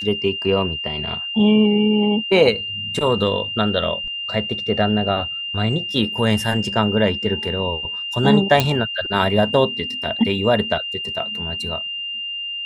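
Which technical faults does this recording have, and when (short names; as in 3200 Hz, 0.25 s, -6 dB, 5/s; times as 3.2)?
tone 2800 Hz -25 dBFS
8.6 pop -2 dBFS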